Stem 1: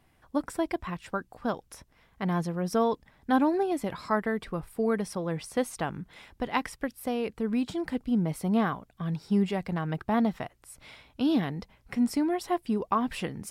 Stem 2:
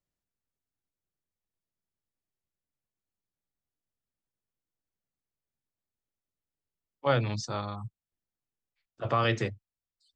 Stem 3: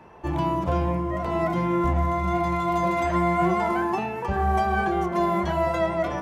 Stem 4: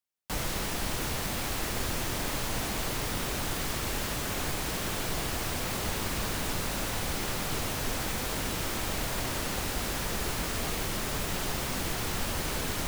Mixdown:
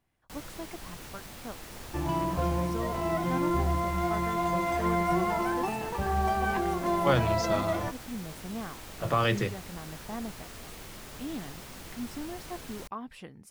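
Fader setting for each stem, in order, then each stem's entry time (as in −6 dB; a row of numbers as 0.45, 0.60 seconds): −12.5, +0.5, −5.0, −12.5 decibels; 0.00, 0.00, 1.70, 0.00 seconds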